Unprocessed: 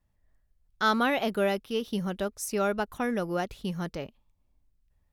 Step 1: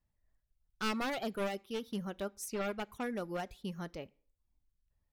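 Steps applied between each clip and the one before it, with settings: one-sided wavefolder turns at -26 dBFS; reverb removal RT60 0.52 s; on a send at -21 dB: reverberation RT60 0.50 s, pre-delay 10 ms; on the sum: trim -7.5 dB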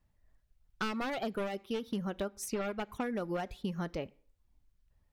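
treble shelf 4.7 kHz -8 dB; compression, threshold -40 dBFS, peak gain reduction 11 dB; trim +8.5 dB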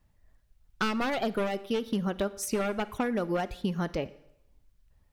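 Schroeder reverb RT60 0.81 s, DRR 17.5 dB; trim +6 dB

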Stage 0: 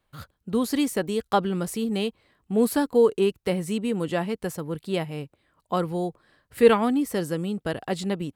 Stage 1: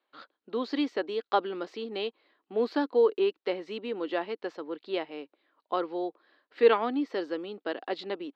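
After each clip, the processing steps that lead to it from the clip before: elliptic band-pass 300–4300 Hz, stop band 40 dB; trim -3 dB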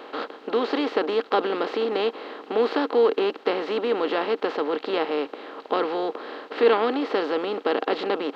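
spectral levelling over time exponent 0.4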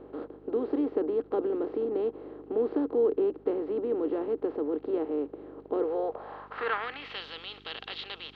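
band-pass sweep 330 Hz -> 3.4 kHz, 5.70–7.23 s; mains buzz 50 Hz, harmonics 8, -57 dBFS -1 dB/octave

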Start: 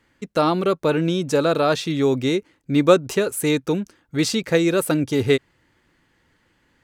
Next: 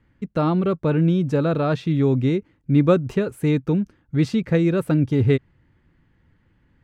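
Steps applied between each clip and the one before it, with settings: tone controls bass +14 dB, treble -14 dB; trim -5 dB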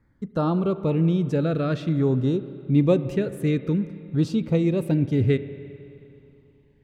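LFO notch saw down 0.53 Hz 730–3000 Hz; spring tank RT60 2.8 s, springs 31/35 ms, chirp 60 ms, DRR 12.5 dB; trim -2.5 dB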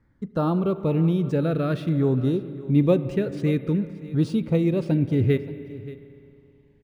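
delay 576 ms -18 dB; decimation joined by straight lines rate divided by 3×

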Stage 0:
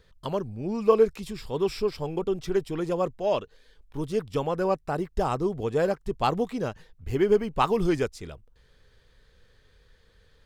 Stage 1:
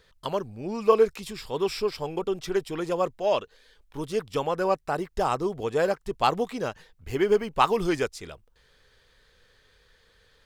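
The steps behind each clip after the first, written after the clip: bass shelf 370 Hz -10 dB; trim +4 dB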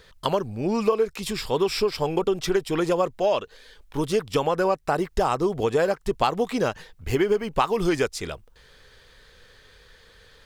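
compression 6:1, threshold -27 dBFS, peak gain reduction 13.5 dB; trim +8.5 dB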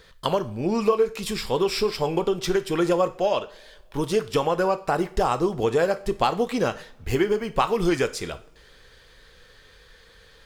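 two-slope reverb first 0.39 s, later 2.3 s, from -26 dB, DRR 9.5 dB

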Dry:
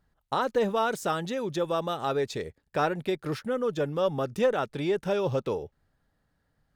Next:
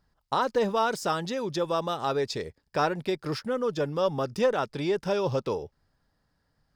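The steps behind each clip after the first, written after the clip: graphic EQ with 31 bands 1 kHz +4 dB, 5 kHz +11 dB, 12.5 kHz -3 dB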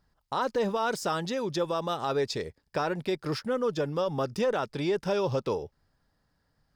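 peak limiter -19 dBFS, peak gain reduction 6 dB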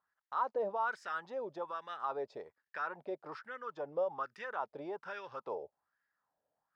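wah-wah 1.2 Hz 600–1800 Hz, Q 3.8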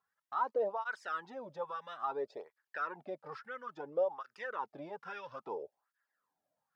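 cancelling through-zero flanger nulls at 0.59 Hz, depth 3.4 ms; trim +2.5 dB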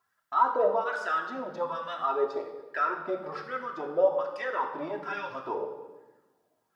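reverberation RT60 1.2 s, pre-delay 3 ms, DRR 0 dB; trim +6.5 dB

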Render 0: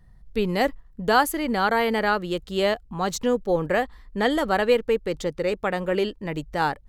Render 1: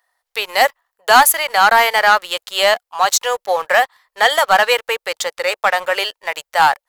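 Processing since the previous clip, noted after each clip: inverse Chebyshev high-pass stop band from 260 Hz, stop band 50 dB; treble shelf 8.6 kHz +7 dB; waveshaping leveller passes 2; trim +6.5 dB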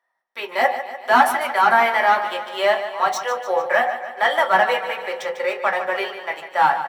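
median filter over 3 samples; feedback delay 148 ms, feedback 57%, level -11 dB; reverberation RT60 0.35 s, pre-delay 3 ms, DRR -2 dB; trim -17.5 dB

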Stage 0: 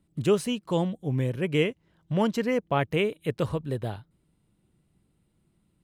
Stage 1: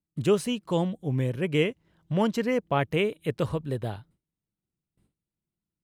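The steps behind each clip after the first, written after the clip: gate with hold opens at -57 dBFS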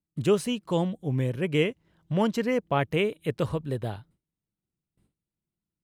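no audible change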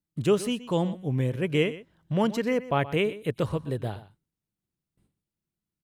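delay 123 ms -16 dB

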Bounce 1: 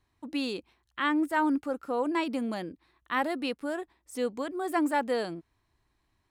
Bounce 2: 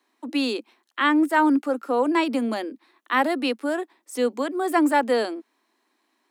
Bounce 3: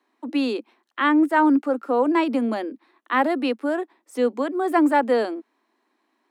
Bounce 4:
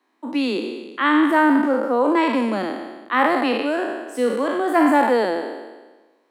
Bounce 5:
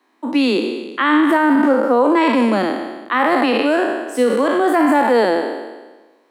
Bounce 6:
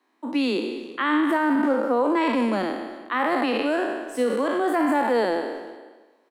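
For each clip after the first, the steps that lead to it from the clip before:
steep high-pass 220 Hz 96 dB/octave; trim +7.5 dB
treble shelf 3.1 kHz -11 dB; trim +2 dB
spectral sustain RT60 1.26 s
loudness maximiser +12 dB; trim -5.5 dB
speakerphone echo 360 ms, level -19 dB; trim -7.5 dB

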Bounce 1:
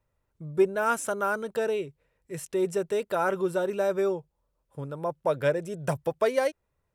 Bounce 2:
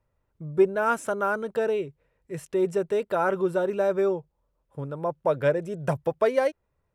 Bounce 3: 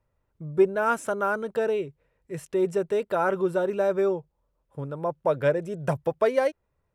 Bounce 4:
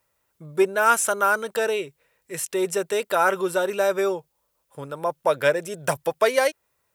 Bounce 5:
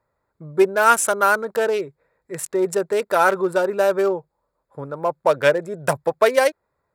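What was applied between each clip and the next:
treble shelf 3.6 kHz -10 dB; trim +2.5 dB
no audible change
tilt EQ +4 dB/octave; trim +5.5 dB
local Wiener filter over 15 samples; trim +4 dB

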